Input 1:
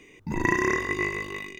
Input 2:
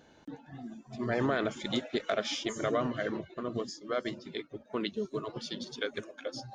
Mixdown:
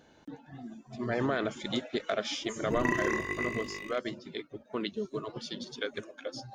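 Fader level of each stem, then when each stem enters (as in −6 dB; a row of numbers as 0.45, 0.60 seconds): −6.5, −0.5 decibels; 2.40, 0.00 seconds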